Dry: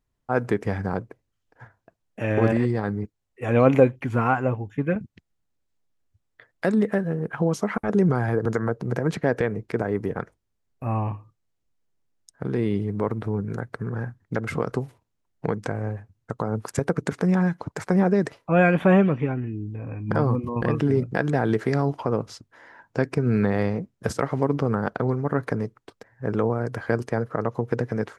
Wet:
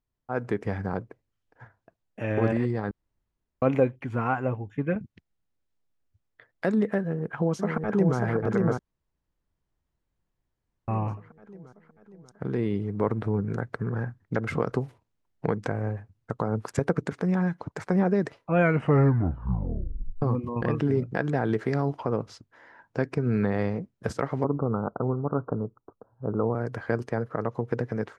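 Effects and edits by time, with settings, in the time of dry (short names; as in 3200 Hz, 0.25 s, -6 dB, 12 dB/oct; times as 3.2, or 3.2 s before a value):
2.91–3.62 room tone
7–8.18 echo throw 0.59 s, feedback 60%, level -3 dB
8.79–10.88 room tone
13–17.06 gain +3.5 dB
18.56 tape stop 1.66 s
24.44–26.55 steep low-pass 1400 Hz 96 dB/oct
whole clip: high shelf 8100 Hz -12 dB; AGC gain up to 5 dB; gain -7.5 dB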